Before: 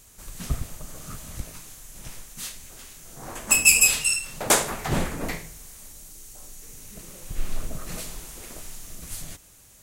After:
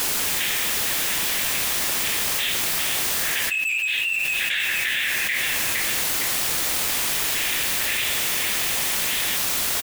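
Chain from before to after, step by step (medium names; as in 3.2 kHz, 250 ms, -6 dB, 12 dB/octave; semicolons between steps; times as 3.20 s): elliptic band-pass 1.7–3.6 kHz; word length cut 8-bit, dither triangular; saturation -22 dBFS, distortion -8 dB; on a send: feedback delay 461 ms, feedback 42%, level -11.5 dB; on the sum: level flattener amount 100%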